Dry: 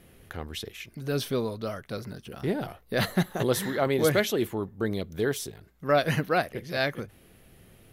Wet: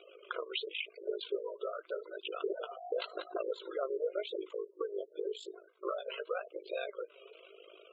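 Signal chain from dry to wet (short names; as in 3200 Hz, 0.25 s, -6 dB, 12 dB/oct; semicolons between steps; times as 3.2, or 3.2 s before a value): FFT band-pass 370–7700 Hz; 2.53–3.32 whine 710 Hz -44 dBFS; fixed phaser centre 1200 Hz, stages 8; AM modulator 52 Hz, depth 85%; compressor 12:1, threshold -45 dBFS, peak gain reduction 23 dB; spectral gate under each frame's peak -15 dB strong; flange 0.9 Hz, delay 2.6 ms, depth 5.2 ms, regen +31%; gain +16 dB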